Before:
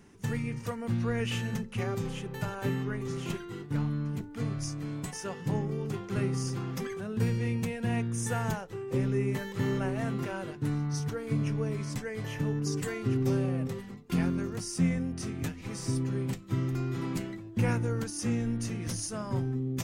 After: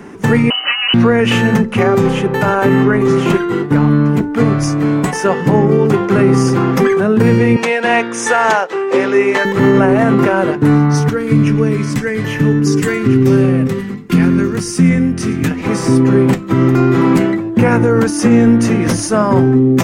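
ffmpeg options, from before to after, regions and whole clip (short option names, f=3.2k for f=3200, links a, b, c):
-filter_complex "[0:a]asettb=1/sr,asplit=3[a][b][c];[a]atrim=end=0.504[d];[b]atrim=start=0.5:end=0.94,asetpts=PTS-STARTPTS,afade=t=in:d=0.004:c=qsin,afade=t=out:st=0.436:d=0.004:c=qsin,asoftclip=type=hard:threshold=-30dB,lowpass=f=2.6k:t=q:w=0.5098,lowpass=f=2.6k:t=q:w=0.6013,lowpass=f=2.6k:t=q:w=0.9,lowpass=f=2.6k:t=q:w=2.563,afreqshift=-3100[e];[c]atrim=start=0.936[f];[d][e]acrossfade=d=0.004:c1=hsin:c2=qsin[g];[g][f]acrossfade=d=0.004:c1=qsin:c2=hsin,asettb=1/sr,asplit=3[h][i][j];[h]atrim=end=7.564[k];[i]atrim=start=7.56:end=9.45,asetpts=PTS-STARTPTS,afade=t=in:d=0.004:c=qsin,afade=t=out:st=1.886:d=0.004:c=qsin,highpass=490,lowpass=5.4k,highshelf=f=2.9k:g=9.5[l];[j]atrim=start=9.446[m];[k][l]acrossfade=d=0.004:c1=hsin:c2=qsin[n];[n][m]acrossfade=d=0.004:c1=qsin:c2=hsin,asettb=1/sr,asplit=3[o][p][q];[o]atrim=end=11.094[r];[p]atrim=start=11.09:end=15.51,asetpts=PTS-STARTPTS,afade=t=in:d=0.004:c=qsin,afade=t=out:st=4.416:d=0.004:c=qsin,equalizer=f=700:w=0.75:g=-12,aecho=1:1:113:0.141,atrim=end_sample=194922[s];[q]atrim=start=15.506[t];[r][s]acrossfade=d=0.004:c1=hsin:c2=qsin[u];[u][t]acrossfade=d=0.004:c1=qsin:c2=hsin,acrossover=split=180 2200:gain=0.2 1 0.251[v][w][x];[v][w][x]amix=inputs=3:normalize=0,alimiter=level_in=27dB:limit=-1dB:release=50:level=0:latency=1,volume=-1dB"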